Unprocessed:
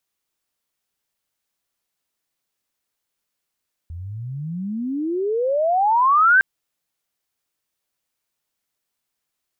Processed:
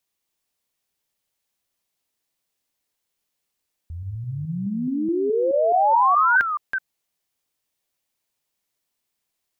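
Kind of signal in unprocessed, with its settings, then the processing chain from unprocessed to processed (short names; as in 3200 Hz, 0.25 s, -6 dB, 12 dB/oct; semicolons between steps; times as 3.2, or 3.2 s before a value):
chirp logarithmic 80 Hz -> 1600 Hz -30 dBFS -> -10 dBFS 2.51 s
reverse delay 0.212 s, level -6.5 dB; bell 1400 Hz -4.5 dB 0.52 oct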